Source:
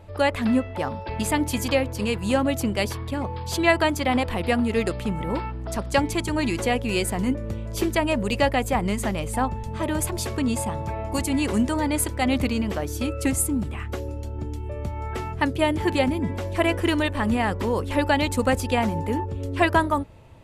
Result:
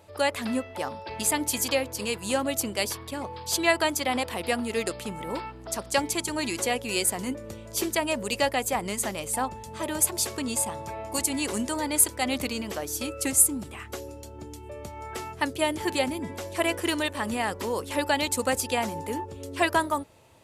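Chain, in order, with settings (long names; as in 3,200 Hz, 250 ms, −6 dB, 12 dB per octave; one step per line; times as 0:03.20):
high-pass filter 63 Hz
bass and treble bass −9 dB, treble +10 dB
level −3.5 dB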